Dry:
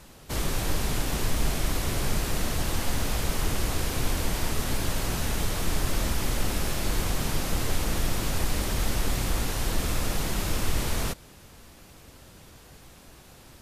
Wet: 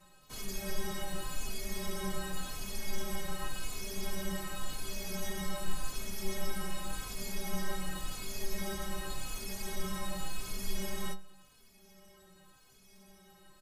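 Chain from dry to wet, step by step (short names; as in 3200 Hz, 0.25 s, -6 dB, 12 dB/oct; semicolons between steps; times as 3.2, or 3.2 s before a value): metallic resonator 190 Hz, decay 0.31 s, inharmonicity 0.008; endless flanger 3.4 ms -0.89 Hz; gain +6 dB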